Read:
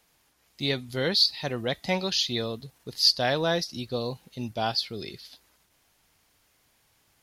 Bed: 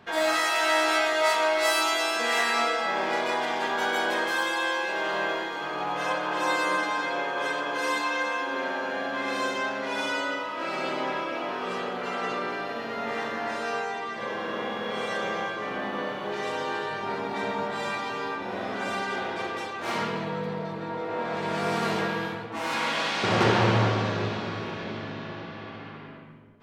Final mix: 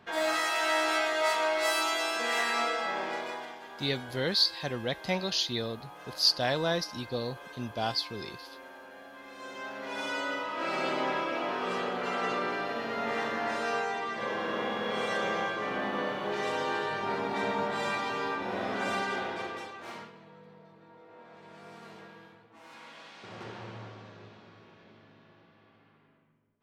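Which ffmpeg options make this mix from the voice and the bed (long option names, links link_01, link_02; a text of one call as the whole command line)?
ffmpeg -i stem1.wav -i stem2.wav -filter_complex "[0:a]adelay=3200,volume=-3.5dB[link_01];[1:a]volume=13dB,afade=type=out:start_time=2.83:duration=0.77:silence=0.199526,afade=type=in:start_time=9.36:duration=1.35:silence=0.133352,afade=type=out:start_time=18.95:duration=1.17:silence=0.0891251[link_02];[link_01][link_02]amix=inputs=2:normalize=0" out.wav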